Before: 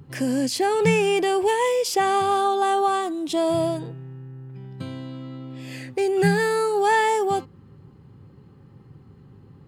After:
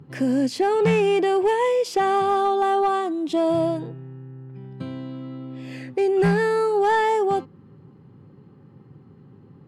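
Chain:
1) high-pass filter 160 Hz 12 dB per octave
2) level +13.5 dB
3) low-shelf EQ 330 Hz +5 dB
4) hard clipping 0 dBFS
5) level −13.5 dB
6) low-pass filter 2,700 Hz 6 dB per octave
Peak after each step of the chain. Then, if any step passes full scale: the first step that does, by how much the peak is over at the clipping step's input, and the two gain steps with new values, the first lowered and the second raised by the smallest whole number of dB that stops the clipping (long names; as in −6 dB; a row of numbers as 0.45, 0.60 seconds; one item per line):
−8.0, +5.5, +7.5, 0.0, −13.5, −13.5 dBFS
step 2, 7.5 dB
step 2 +5.5 dB, step 5 −5.5 dB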